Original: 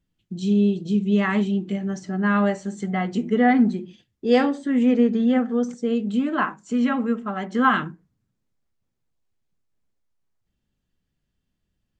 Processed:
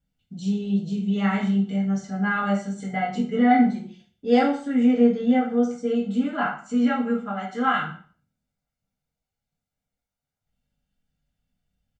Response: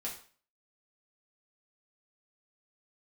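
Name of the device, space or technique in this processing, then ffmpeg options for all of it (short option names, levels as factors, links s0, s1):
microphone above a desk: -filter_complex "[0:a]asplit=3[s0][s1][s2];[s0]afade=t=out:st=7.31:d=0.02[s3];[s1]lowshelf=f=330:g=-8.5,afade=t=in:st=7.31:d=0.02,afade=t=out:st=7.86:d=0.02[s4];[s2]afade=t=in:st=7.86:d=0.02[s5];[s3][s4][s5]amix=inputs=3:normalize=0,aecho=1:1:1.4:0.57[s6];[1:a]atrim=start_sample=2205[s7];[s6][s7]afir=irnorm=-1:irlink=0,volume=0.75"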